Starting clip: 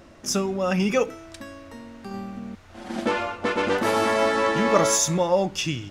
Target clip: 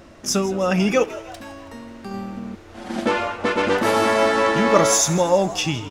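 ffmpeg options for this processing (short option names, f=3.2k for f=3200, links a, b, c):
-filter_complex "[0:a]asettb=1/sr,asplit=3[a][b][c];[a]atrim=end=1.044[d];[b]atrim=start=1.04:end=1.54,asetpts=PTS-STARTPTS,afade=t=in:d=0.004:c=qsin,afade=t=out:st=0.496:d=0.004:c=qsin,asoftclip=type=hard:threshold=-37dB[e];[c]atrim=start=1.536[f];[d][e]acrossfade=d=0.004:c1=hsin:c2=qsin[g];[g][f]acrossfade=d=0.004:c1=qsin:c2=hsin,asplit=2[h][i];[i]asplit=5[j][k][l][m][n];[j]adelay=163,afreqshift=120,volume=-17dB[o];[k]adelay=326,afreqshift=240,volume=-22.5dB[p];[l]adelay=489,afreqshift=360,volume=-28dB[q];[m]adelay=652,afreqshift=480,volume=-33.5dB[r];[n]adelay=815,afreqshift=600,volume=-39.1dB[s];[o][p][q][r][s]amix=inputs=5:normalize=0[t];[h][t]amix=inputs=2:normalize=0,volume=3.5dB"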